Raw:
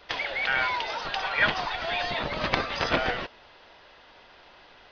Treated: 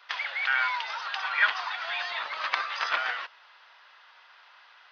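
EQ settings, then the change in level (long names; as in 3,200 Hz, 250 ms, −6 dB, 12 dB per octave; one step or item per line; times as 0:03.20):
high-pass with resonance 1,200 Hz, resonance Q 1.8
−3.5 dB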